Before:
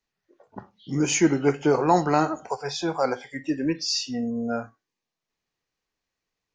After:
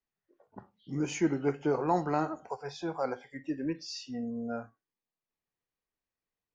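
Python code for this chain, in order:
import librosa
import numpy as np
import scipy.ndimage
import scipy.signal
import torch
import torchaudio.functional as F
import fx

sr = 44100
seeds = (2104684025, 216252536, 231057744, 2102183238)

y = fx.high_shelf(x, sr, hz=3200.0, db=-10.0)
y = y * 10.0 ** (-8.0 / 20.0)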